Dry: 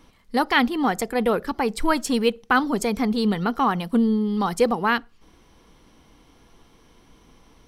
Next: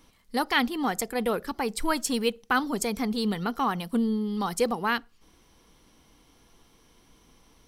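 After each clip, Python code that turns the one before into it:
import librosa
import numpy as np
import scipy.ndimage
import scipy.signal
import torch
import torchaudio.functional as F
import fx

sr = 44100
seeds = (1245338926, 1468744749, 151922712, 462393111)

y = fx.high_shelf(x, sr, hz=4300.0, db=9.0)
y = y * 10.0 ** (-6.0 / 20.0)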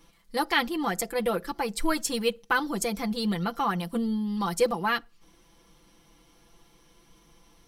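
y = x + 0.77 * np.pad(x, (int(5.9 * sr / 1000.0), 0))[:len(x)]
y = y * 10.0 ** (-2.0 / 20.0)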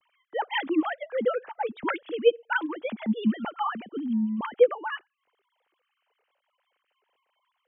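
y = fx.sine_speech(x, sr)
y = fx.rider(y, sr, range_db=3, speed_s=2.0)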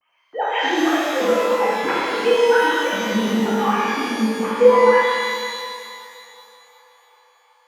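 y = fx.echo_banded(x, sr, ms=374, feedback_pct=80, hz=950.0, wet_db=-23)
y = fx.rev_shimmer(y, sr, seeds[0], rt60_s=2.2, semitones=12, shimmer_db=-8, drr_db=-10.0)
y = y * 10.0 ** (-1.0 / 20.0)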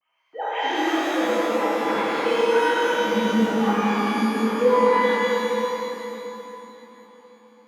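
y = x + 10.0 ** (-5.5 / 20.0) * np.pad(x, (int(210 * sr / 1000.0), 0))[:len(x)]
y = fx.room_shoebox(y, sr, seeds[1], volume_m3=220.0, walls='hard', distance_m=0.62)
y = y * 10.0 ** (-8.0 / 20.0)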